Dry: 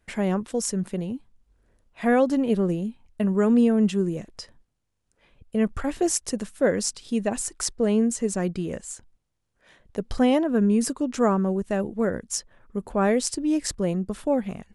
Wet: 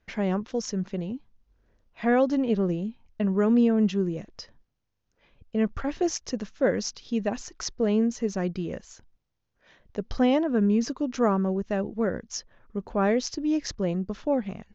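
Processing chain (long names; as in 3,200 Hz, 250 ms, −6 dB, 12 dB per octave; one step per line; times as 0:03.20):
Butterworth low-pass 6,600 Hz 96 dB per octave
level −2 dB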